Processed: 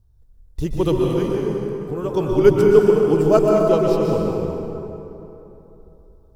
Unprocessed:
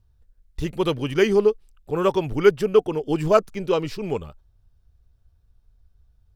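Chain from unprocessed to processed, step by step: bell 2200 Hz -10.5 dB 2.2 oct; 0.94–2.14 compressor 5:1, threshold -28 dBFS, peak gain reduction 13 dB; plate-style reverb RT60 3.2 s, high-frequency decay 0.55×, pre-delay 0.11 s, DRR -1.5 dB; gain +3.5 dB

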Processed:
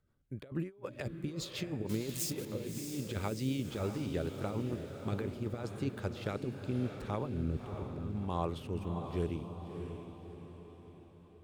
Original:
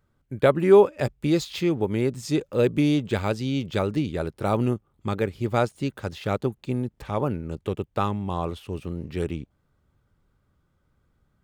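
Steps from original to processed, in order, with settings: 1.89–2.45 switching spikes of -21.5 dBFS; 7.26–8.16 tilt -2.5 dB/oct; negative-ratio compressor -25 dBFS, ratio -0.5; rotary speaker horn 6.7 Hz, later 0.8 Hz, at 5.59; diffused feedback echo 0.631 s, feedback 49%, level -7 dB; gain -9 dB

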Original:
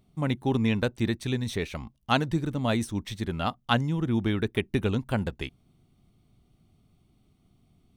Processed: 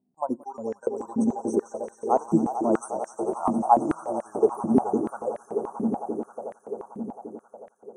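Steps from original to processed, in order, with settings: Chebyshev band-stop 940–6500 Hz, order 3; spectral noise reduction 16 dB; loudest bins only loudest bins 64; swelling echo 89 ms, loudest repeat 8, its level -15 dB; stepped high-pass 6.9 Hz 240–1800 Hz; gain +3 dB

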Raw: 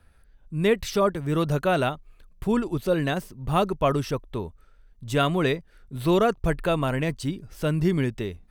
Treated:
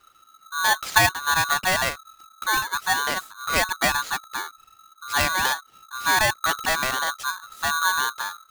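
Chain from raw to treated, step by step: 0.9–1.54 transient shaper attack +8 dB, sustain -1 dB; polarity switched at an audio rate 1300 Hz

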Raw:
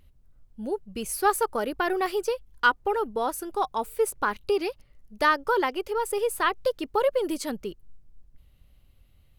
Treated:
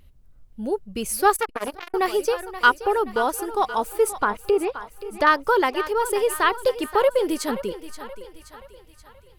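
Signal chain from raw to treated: 4.09–5.27 treble ducked by the level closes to 1600 Hz, closed at -22 dBFS; thinning echo 0.527 s, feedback 53%, high-pass 380 Hz, level -12.5 dB; 1.36–1.94 core saturation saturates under 1700 Hz; gain +4.5 dB

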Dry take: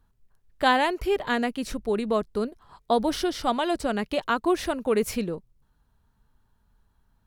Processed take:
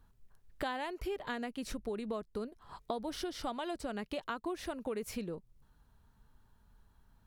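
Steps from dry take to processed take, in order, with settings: compressor 5:1, threshold -38 dBFS, peak gain reduction 19.5 dB; gain +1 dB

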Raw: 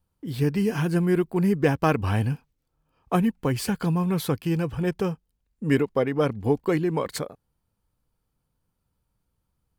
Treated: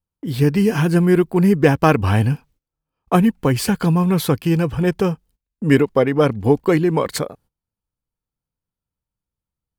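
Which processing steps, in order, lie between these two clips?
gate -56 dBFS, range -19 dB; gain +7.5 dB

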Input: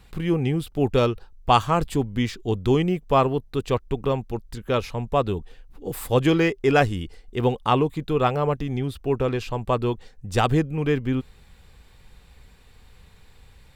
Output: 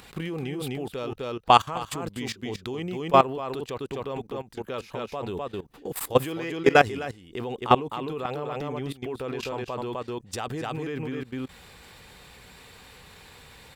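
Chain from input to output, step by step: upward compressor, threshold -32 dBFS; HPF 290 Hz 6 dB/oct; echo 0.255 s -5.5 dB; level quantiser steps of 18 dB; gain +4.5 dB

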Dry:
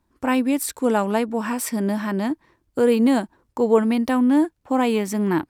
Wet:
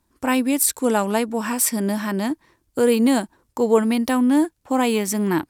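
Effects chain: bell 11000 Hz +9.5 dB 2.3 oct

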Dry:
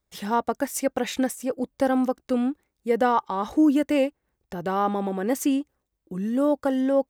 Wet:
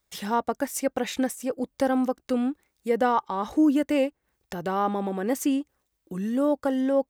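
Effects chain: mismatched tape noise reduction encoder only; gain -1.5 dB

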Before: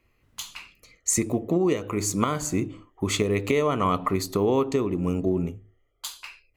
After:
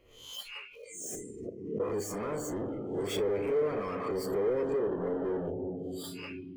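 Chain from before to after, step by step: spectral swells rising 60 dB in 0.38 s; 1.15–1.8 flipped gate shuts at -18 dBFS, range -39 dB; 4.75–5.29 notch comb 1400 Hz; on a send at -11.5 dB: reverb RT60 2.7 s, pre-delay 5 ms; on the sum: soft clip -37.5 dBFS, distortion -2 dB; spectral noise reduction 20 dB; small resonant body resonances 470/3100 Hz, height 16 dB, ringing for 20 ms; backwards sustainer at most 69 dB/s; gain -1.5 dB

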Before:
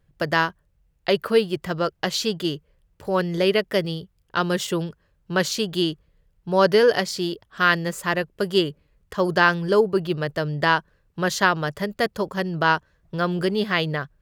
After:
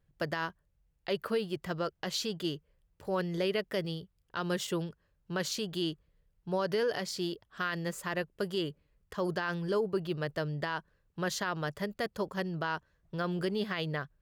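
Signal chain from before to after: limiter -14 dBFS, peak gain reduction 10.5 dB; gain -8.5 dB

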